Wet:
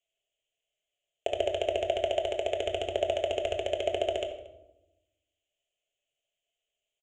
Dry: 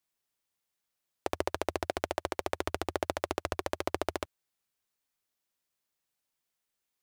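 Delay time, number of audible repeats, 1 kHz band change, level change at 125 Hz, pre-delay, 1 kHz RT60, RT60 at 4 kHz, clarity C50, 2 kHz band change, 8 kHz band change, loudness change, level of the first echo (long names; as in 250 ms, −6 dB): 230 ms, 1, 0.0 dB, −2.0 dB, 5 ms, 0.80 s, 0.65 s, 8.0 dB, −1.5 dB, −4.0 dB, +4.5 dB, −22.5 dB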